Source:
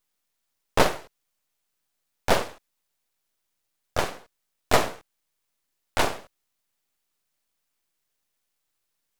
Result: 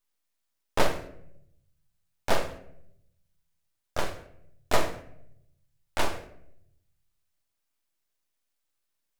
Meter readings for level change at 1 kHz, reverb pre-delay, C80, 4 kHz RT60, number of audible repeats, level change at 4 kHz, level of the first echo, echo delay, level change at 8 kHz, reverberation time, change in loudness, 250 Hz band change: -5.0 dB, 3 ms, 15.0 dB, 0.50 s, none, -5.0 dB, none, none, -5.0 dB, 0.75 s, -5.5 dB, -4.5 dB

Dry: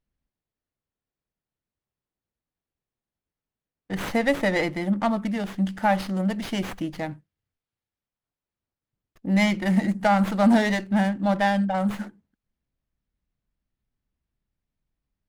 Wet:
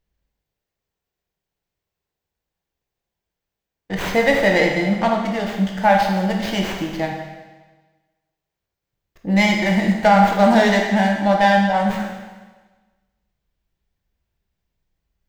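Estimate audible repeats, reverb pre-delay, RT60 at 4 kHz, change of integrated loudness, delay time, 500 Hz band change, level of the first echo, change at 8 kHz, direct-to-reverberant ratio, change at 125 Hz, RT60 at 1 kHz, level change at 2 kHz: none, 15 ms, 1.3 s, +6.0 dB, none, +8.5 dB, none, +6.5 dB, 0.5 dB, +4.5 dB, 1.3 s, +8.5 dB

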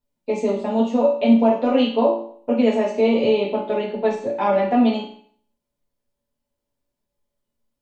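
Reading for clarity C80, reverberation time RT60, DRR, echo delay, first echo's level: 9.0 dB, 0.55 s, -7.5 dB, none, none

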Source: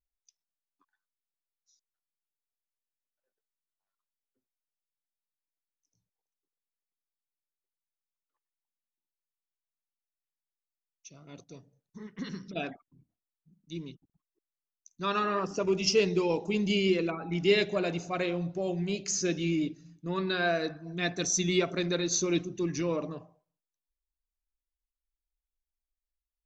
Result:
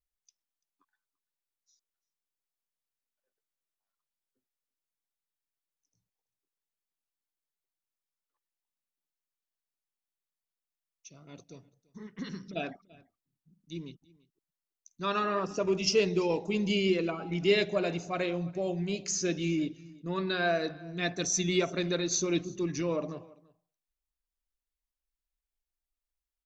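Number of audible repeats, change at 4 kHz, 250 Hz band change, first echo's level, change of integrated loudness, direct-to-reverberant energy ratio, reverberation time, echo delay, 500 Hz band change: 1, -1.0 dB, -1.0 dB, -23.5 dB, -1.0 dB, none, none, 0.338 s, -0.5 dB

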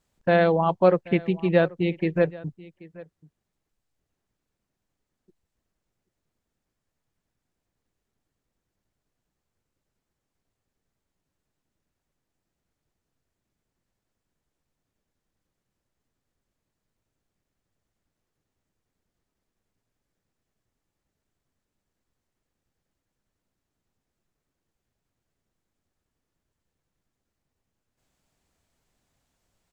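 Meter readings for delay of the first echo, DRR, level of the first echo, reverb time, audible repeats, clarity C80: 0.783 s, none, -21.0 dB, none, 1, none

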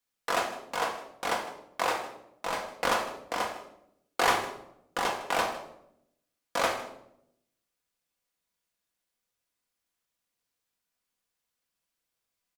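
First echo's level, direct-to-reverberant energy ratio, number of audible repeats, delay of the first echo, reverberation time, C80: -16.5 dB, 1.0 dB, 1, 0.157 s, 0.80 s, 10.0 dB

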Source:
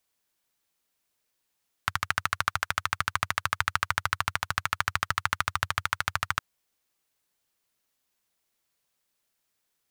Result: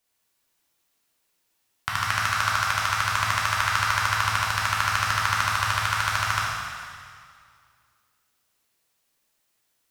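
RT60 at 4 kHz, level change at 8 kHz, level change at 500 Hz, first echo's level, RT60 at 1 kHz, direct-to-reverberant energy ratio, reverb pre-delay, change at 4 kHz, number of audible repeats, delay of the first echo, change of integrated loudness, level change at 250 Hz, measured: 2.0 s, +7.0 dB, +5.5 dB, none, 2.1 s, -6.0 dB, 5 ms, +7.0 dB, none, none, +6.0 dB, +4.5 dB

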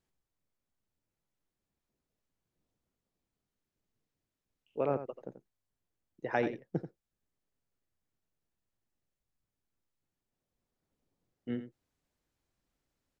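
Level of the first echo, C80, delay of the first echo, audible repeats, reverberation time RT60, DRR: -11.0 dB, none, 86 ms, 1, none, none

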